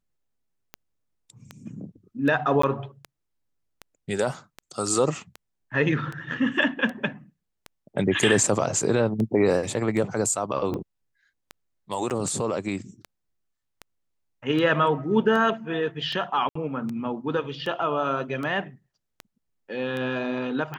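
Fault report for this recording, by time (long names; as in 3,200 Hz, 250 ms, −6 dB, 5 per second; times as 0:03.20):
scratch tick 78 rpm −20 dBFS
0:02.62–0:02.63: drop-out 14 ms
0:12.10–0:12.11: drop-out 7.1 ms
0:16.49–0:16.55: drop-out 64 ms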